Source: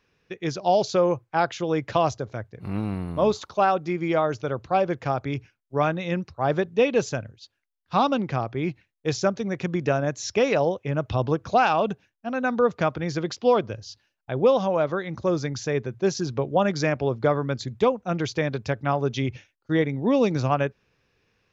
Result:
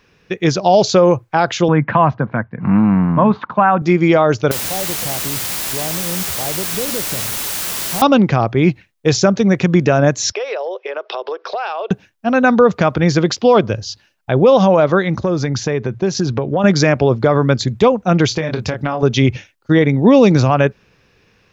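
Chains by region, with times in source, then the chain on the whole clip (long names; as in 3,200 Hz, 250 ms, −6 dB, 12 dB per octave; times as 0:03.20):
0:01.68–0:03.82: downward compressor 2 to 1, threshold −23 dBFS + loudspeaker in its box 140–2,300 Hz, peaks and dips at 150 Hz +8 dB, 230 Hz +7 dB, 400 Hz −9 dB, 580 Hz −4 dB, 1,000 Hz +7 dB, 1,600 Hz +5 dB
0:04.51–0:08.02: inverse Chebyshev low-pass filter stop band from 1,800 Hz + downward compressor 3 to 1, threshold −42 dBFS + bit-depth reduction 6 bits, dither triangular
0:10.32–0:11.91: Chebyshev band-pass filter 380–5,400 Hz, order 5 + downward compressor, threshold −34 dBFS
0:15.20–0:16.64: high-shelf EQ 6,600 Hz −9 dB + downward compressor 5 to 1, threshold −27 dBFS
0:18.28–0:19.03: double-tracking delay 25 ms −6 dB + downward compressor 12 to 1, threshold −28 dBFS
whole clip: parametric band 190 Hz +3.5 dB 0.32 octaves; boost into a limiter +14.5 dB; level −1 dB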